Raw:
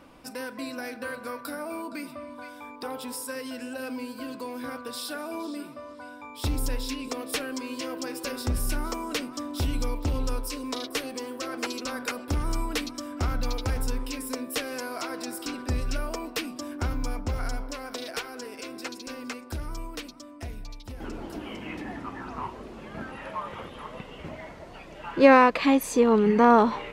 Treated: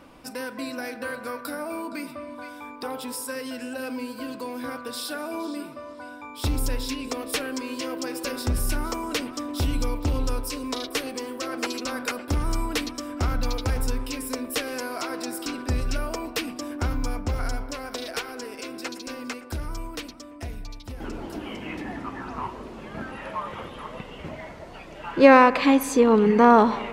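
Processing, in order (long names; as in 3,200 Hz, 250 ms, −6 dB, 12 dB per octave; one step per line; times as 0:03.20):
bucket-brigade delay 112 ms, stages 2,048, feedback 66%, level −18.5 dB
level +2.5 dB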